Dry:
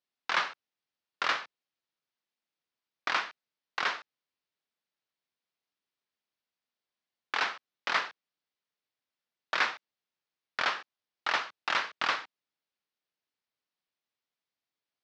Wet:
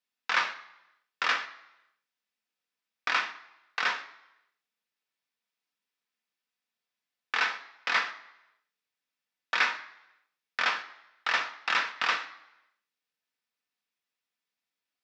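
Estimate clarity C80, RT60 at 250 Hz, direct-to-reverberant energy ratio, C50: 16.5 dB, 0.75 s, 6.0 dB, 13.5 dB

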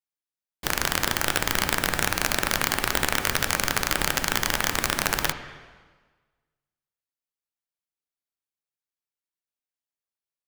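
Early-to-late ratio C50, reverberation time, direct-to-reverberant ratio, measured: 9.5 dB, 1.4 s, 7.5 dB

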